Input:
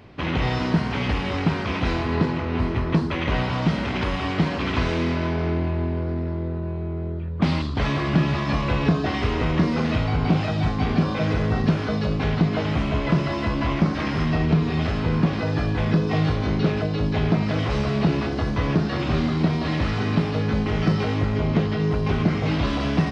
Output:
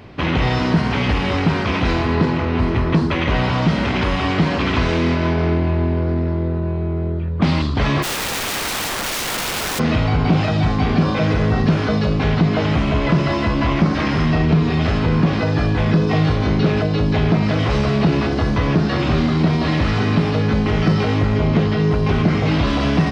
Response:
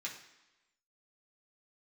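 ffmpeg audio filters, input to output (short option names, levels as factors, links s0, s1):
-filter_complex "[0:a]asplit=2[s0][s1];[s1]alimiter=limit=0.133:level=0:latency=1:release=38,volume=1.19[s2];[s0][s2]amix=inputs=2:normalize=0,asplit=3[s3][s4][s5];[s3]afade=t=out:st=8.02:d=0.02[s6];[s4]aeval=exprs='(mod(8.41*val(0)+1,2)-1)/8.41':c=same,afade=t=in:st=8.02:d=0.02,afade=t=out:st=9.78:d=0.02[s7];[s5]afade=t=in:st=9.78:d=0.02[s8];[s6][s7][s8]amix=inputs=3:normalize=0"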